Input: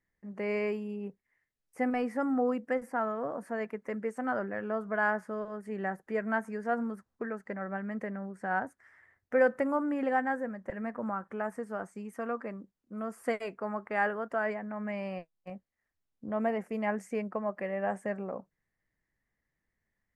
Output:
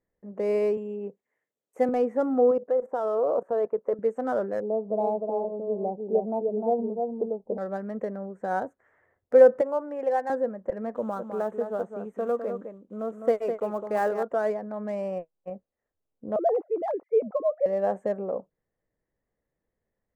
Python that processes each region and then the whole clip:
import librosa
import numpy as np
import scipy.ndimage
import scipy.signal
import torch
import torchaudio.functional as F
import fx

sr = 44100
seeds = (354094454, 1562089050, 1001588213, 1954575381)

y = fx.chain(x, sr, fx.highpass(hz=180.0, slope=12),
    fx.high_shelf(hz=3200.0, db=9.0), at=(0.77, 1.89))
y = fx.chain(y, sr, fx.band_shelf(hz=700.0, db=9.5, octaves=2.3),
    fx.level_steps(step_db=16), at=(2.51, 3.99))
y = fx.chain(y, sr, fx.ellip_lowpass(hz=860.0, order=4, stop_db=50),
    fx.echo_single(ms=303, db=-4.0), at=(4.6, 7.58))
y = fx.chain(y, sr, fx.highpass(hz=540.0, slope=12),
    fx.peak_eq(hz=1300.0, db=-7.5, octaves=0.29), at=(9.61, 10.3))
y = fx.chain(y, sr, fx.block_float(bits=5),
    fx.high_shelf(hz=5300.0, db=-6.0),
    fx.echo_single(ms=206, db=-7.5), at=(10.95, 14.23))
y = fx.chain(y, sr, fx.sine_speech(),
    fx.lowpass(hz=2200.0, slope=12),
    fx.peak_eq(hz=1700.0, db=-13.0, octaves=0.46), at=(16.36, 17.66))
y = fx.wiener(y, sr, points=9)
y = fx.graphic_eq_10(y, sr, hz=(500, 2000, 8000), db=(11, -7, 4))